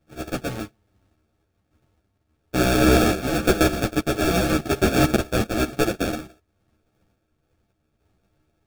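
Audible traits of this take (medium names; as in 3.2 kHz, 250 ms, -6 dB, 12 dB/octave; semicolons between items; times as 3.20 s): a buzz of ramps at a fixed pitch in blocks of 64 samples; random-step tremolo; aliases and images of a low sample rate 1 kHz, jitter 0%; a shimmering, thickened sound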